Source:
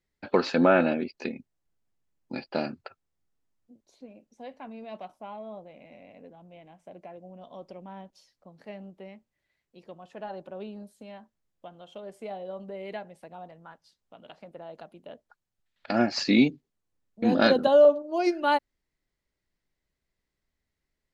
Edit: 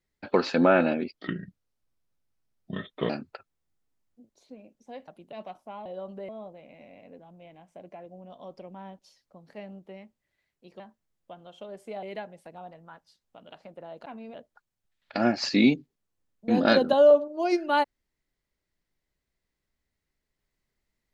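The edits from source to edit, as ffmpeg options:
-filter_complex "[0:a]asplit=11[s0][s1][s2][s3][s4][s5][s6][s7][s8][s9][s10];[s0]atrim=end=1.154[s11];[s1]atrim=start=1.15:end=2.61,asetpts=PTS-STARTPTS,asetrate=33075,aresample=44100[s12];[s2]atrim=start=2.606:end=4.592[s13];[s3]atrim=start=14.828:end=15.082[s14];[s4]atrim=start=4.868:end=5.402[s15];[s5]atrim=start=12.368:end=12.802[s16];[s6]atrim=start=5.398:end=9.912[s17];[s7]atrim=start=11.138:end=12.372[s18];[s8]atrim=start=12.798:end=14.832[s19];[s9]atrim=start=4.588:end=4.872[s20];[s10]atrim=start=15.078[s21];[s11][s12]acrossfade=d=0.004:c1=hsin:c2=hsin[s22];[s22][s13]acrossfade=d=0.004:c1=hsin:c2=hsin[s23];[s23][s14]acrossfade=d=0.004:c1=hsin:c2=hsin[s24];[s24][s15]acrossfade=d=0.004:c1=hsin:c2=hsin[s25];[s25][s16]acrossfade=d=0.004:c1=hsin:c2=hsin[s26];[s26][s17]acrossfade=d=0.004:c1=hsin:c2=hsin[s27];[s27][s18]acrossfade=d=0.004:c1=hsin:c2=hsin[s28];[s28][s19]acrossfade=d=0.004:c1=hsin:c2=hsin[s29];[s29][s20]acrossfade=d=0.004:c1=hsin:c2=hsin[s30];[s30][s21]acrossfade=d=0.004:c1=hsin:c2=hsin"

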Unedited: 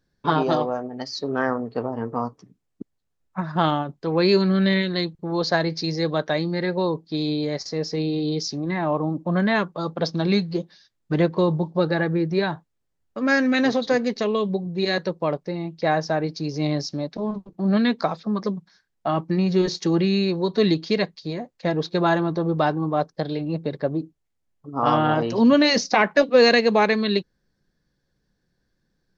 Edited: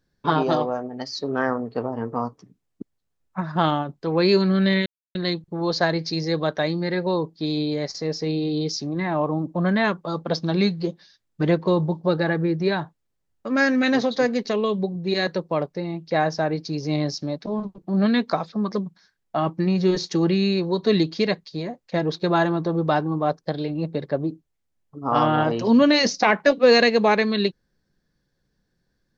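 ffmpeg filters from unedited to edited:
-filter_complex "[0:a]asplit=2[s0][s1];[s0]atrim=end=4.86,asetpts=PTS-STARTPTS,afade=t=out:st=4.856:d=0.004:c=hsin,apad=pad_dur=0.29[s2];[s1]atrim=start=4.86,asetpts=PTS-STARTPTS,afade=t=in:d=0.004:c=hsin[s3];[s2][s3]concat=n=2:v=0:a=1"

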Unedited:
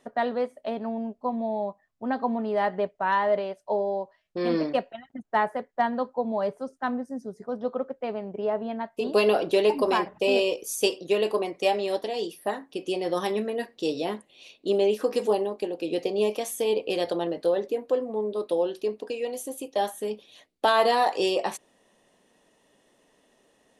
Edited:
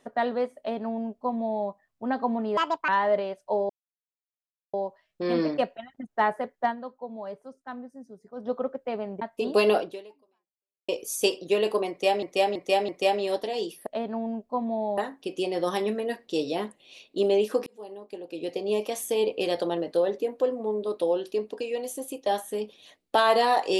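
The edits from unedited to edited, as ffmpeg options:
-filter_complex "[0:a]asplit=14[s0][s1][s2][s3][s4][s5][s6][s7][s8][s9][s10][s11][s12][s13];[s0]atrim=end=2.574[s14];[s1]atrim=start=2.57:end=3.08,asetpts=PTS-STARTPTS,asetrate=71442,aresample=44100,atrim=end_sample=13883,asetpts=PTS-STARTPTS[s15];[s2]atrim=start=3.076:end=3.89,asetpts=PTS-STARTPTS,afade=t=out:st=0.81:d=0.004:c=hsin,apad=pad_dur=1.04[s16];[s3]atrim=start=3.89:end=5.92,asetpts=PTS-STARTPTS,afade=t=in:d=0.004:c=hsin,afade=t=out:st=1.9:d=0.13:silence=0.316228[s17];[s4]atrim=start=5.92:end=7.5,asetpts=PTS-STARTPTS,volume=0.316[s18];[s5]atrim=start=7.5:end=8.372,asetpts=PTS-STARTPTS,afade=t=in:d=0.13:silence=0.316228[s19];[s6]atrim=start=8.808:end=10.48,asetpts=PTS-STARTPTS,afade=t=out:st=0.562:d=1.11:c=exp[s20];[s7]atrim=start=10.48:end=11.822,asetpts=PTS-STARTPTS,afade=t=in:d=0.004:c=hsin[s21];[s8]atrim=start=11.488:end=11.822[s22];[s9]atrim=start=11.488:end=11.822[s23];[s10]atrim=start=11.488:end=12.472[s24];[s11]atrim=start=0.578:end=1.692[s25];[s12]atrim=start=12.468:end=15.16,asetpts=PTS-STARTPTS,afade=t=out:st=2.688:d=0.004:c=hsin[s26];[s13]atrim=start=15.16,asetpts=PTS-STARTPTS,afade=t=in:d=1.36[s27];[s14][s15]acrossfade=d=0.004:c1=hsin:c2=hsin[s28];[s16][s17][s18][s19]concat=n=4:v=0:a=1[s29];[s28][s29]acrossfade=d=0.004:c1=hsin:c2=hsin[s30];[s20][s21]concat=n=2:v=0:a=1[s31];[s30][s31]acrossfade=d=0.004:c1=hsin:c2=hsin[s32];[s32][s22]acrossfade=d=0.004:c1=hsin:c2=hsin[s33];[s33][s23]acrossfade=d=0.004:c1=hsin:c2=hsin[s34];[s34][s24]acrossfade=d=0.004:c1=hsin:c2=hsin[s35];[s35][s25]acrossfade=d=0.004:c1=hsin:c2=hsin[s36];[s26][s27]concat=n=2:v=0:a=1[s37];[s36][s37]acrossfade=d=0.004:c1=hsin:c2=hsin"

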